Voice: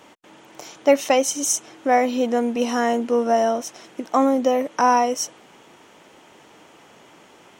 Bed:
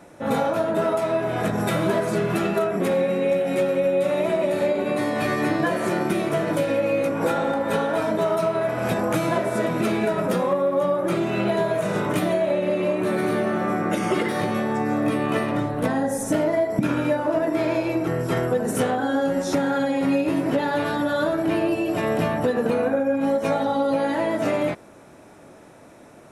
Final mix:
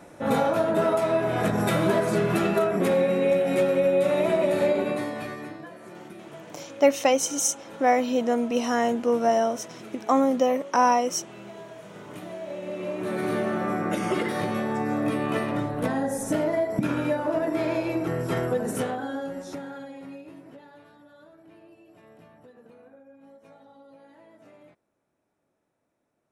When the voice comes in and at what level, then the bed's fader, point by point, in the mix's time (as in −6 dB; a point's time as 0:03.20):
5.95 s, −3.0 dB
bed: 0:04.78 −0.5 dB
0:05.69 −20.5 dB
0:11.92 −20.5 dB
0:13.33 −3.5 dB
0:18.61 −3.5 dB
0:20.98 −30 dB